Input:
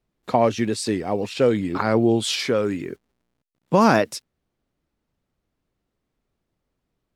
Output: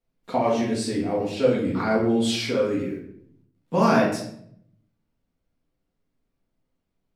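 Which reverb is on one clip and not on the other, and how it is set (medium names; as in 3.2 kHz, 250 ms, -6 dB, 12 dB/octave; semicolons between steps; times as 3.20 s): simulated room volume 130 m³, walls mixed, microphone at 1.7 m; trim -9.5 dB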